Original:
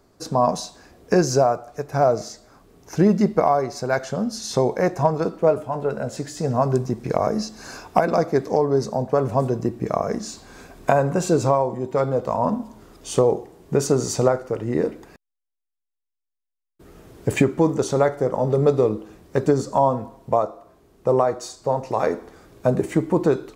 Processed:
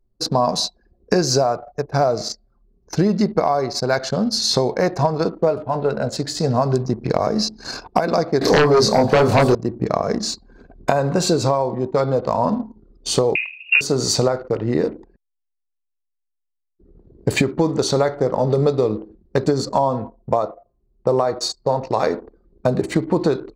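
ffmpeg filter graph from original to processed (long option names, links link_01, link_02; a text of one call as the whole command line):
ffmpeg -i in.wav -filter_complex "[0:a]asettb=1/sr,asplit=3[link_01][link_02][link_03];[link_01]atrim=end=8.414[link_04];[link_02]atrim=start=8.41:end=9.55,asetpts=PTS-STARTPTS,afade=type=in:duration=0.004:curve=qsin,afade=type=out:start_time=1.136:duration=0.004:curve=qsin,lowshelf=frequency=480:gain=-3,asplit=2[link_05][link_06];[link_06]adelay=27,volume=-2dB[link_07];[link_05][link_07]amix=inputs=2:normalize=0,atrim=end_sample=50274,aeval=exprs='0.631*sin(PI/2*3.55*val(0)/0.631)':channel_layout=same[link_08];[link_03]atrim=start=9.546[link_09];[link_04][link_08]acrossfade=duration=0.004:curve1=hsin:curve2=qsin[link_10];[link_10][link_09]acrossfade=duration=0.004:curve1=qsin:curve2=hsin,asettb=1/sr,asplit=3[link_11][link_12][link_13];[link_11]atrim=end=13.354[link_14];[link_12]atrim=start=13.35:end=13.81,asetpts=PTS-STARTPTS,afade=type=in:duration=0.004:curve=qsin,afade=type=out:start_time=0.456:duration=0.004:curve=qsin,acontrast=88,lowpass=frequency=2500:width_type=q:width=0.5098,lowpass=frequency=2500:width_type=q:width=0.6013,lowpass=frequency=2500:width_type=q:width=0.9,lowpass=frequency=2500:width_type=q:width=2.563,afreqshift=-2900[link_15];[link_13]atrim=start=13.806[link_16];[link_14][link_15]acrossfade=duration=0.004:curve1=hsin:curve2=qsin[link_17];[link_17][link_16]acrossfade=duration=0.004:curve1=qsin:curve2=hsin,anlmdn=1.58,equalizer=frequency=4300:width=2.7:gain=13,acompressor=threshold=-19dB:ratio=4,volume=5dB" out.wav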